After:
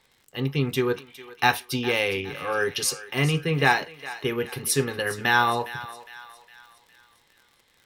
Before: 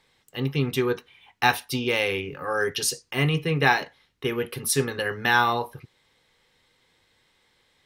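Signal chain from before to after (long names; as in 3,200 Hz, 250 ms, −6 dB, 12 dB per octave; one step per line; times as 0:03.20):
surface crackle 57 per second −43 dBFS
feedback echo with a high-pass in the loop 410 ms, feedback 49%, high-pass 800 Hz, level −14 dB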